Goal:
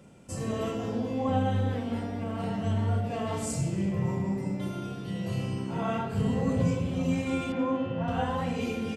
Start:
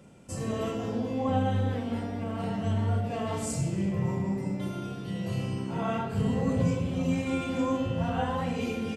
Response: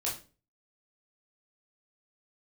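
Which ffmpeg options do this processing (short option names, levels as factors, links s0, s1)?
-filter_complex "[0:a]asettb=1/sr,asplit=3[s0][s1][s2];[s0]atrim=end=7.524[s3];[s1]atrim=start=7.52:end=8.08,asetpts=PTS-STARTPTS,afade=t=in:d=0.004:c=qsin,afade=t=out:st=0.556:d=0.004:c=qsin,highpass=140,lowpass=2700[s4];[s2]atrim=start=8.076[s5];[s3][s4]acrossfade=d=0.004:c1=hsin:c2=qsin[s6];[s6][s5]acrossfade=d=0.004:c1=qsin:c2=hsin"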